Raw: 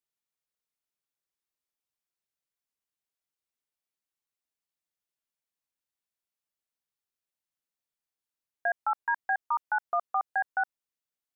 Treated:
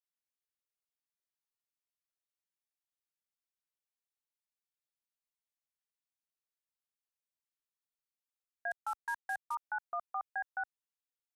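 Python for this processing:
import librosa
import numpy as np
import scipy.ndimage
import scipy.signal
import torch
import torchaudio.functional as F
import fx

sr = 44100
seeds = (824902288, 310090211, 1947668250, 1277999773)

y = fx.cvsd(x, sr, bps=64000, at=(8.71, 9.55))
y = fx.peak_eq(y, sr, hz=230.0, db=-8.5, octaves=2.6)
y = y * 10.0 ** (-7.5 / 20.0)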